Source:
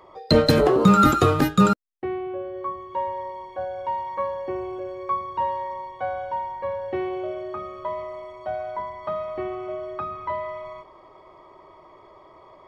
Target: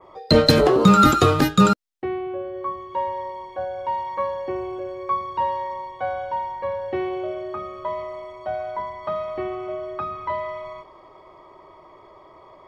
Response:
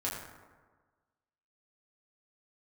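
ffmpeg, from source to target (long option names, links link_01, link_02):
-af "adynamicequalizer=threshold=0.00794:dfrequency=4600:dqfactor=0.78:tfrequency=4600:tqfactor=0.78:attack=5:release=100:ratio=0.375:range=2.5:mode=boostabove:tftype=bell,volume=1.5dB"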